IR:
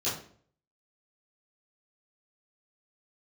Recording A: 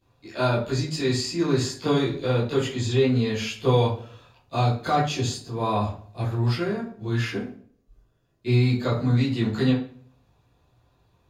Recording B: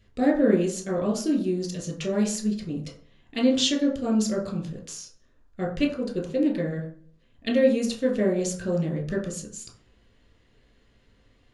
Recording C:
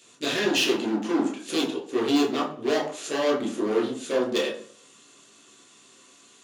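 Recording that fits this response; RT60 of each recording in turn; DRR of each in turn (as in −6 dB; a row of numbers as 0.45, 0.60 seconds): A; 0.50, 0.50, 0.50 seconds; −13.0, 0.0, −4.5 decibels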